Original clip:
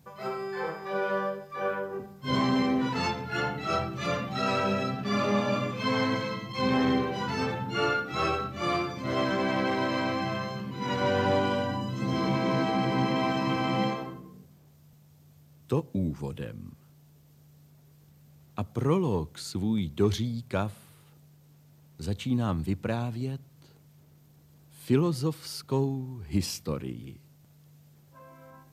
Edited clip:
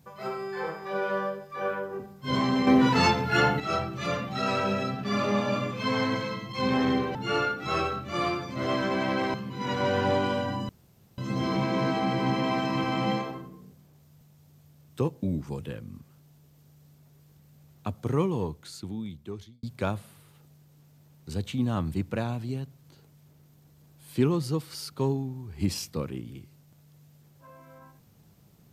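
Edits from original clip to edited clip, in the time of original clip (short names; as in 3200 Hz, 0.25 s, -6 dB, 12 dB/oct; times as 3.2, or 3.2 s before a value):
2.67–3.6 gain +7.5 dB
7.15–7.63 cut
9.82–10.55 cut
11.9 insert room tone 0.49 s
18.82–20.35 fade out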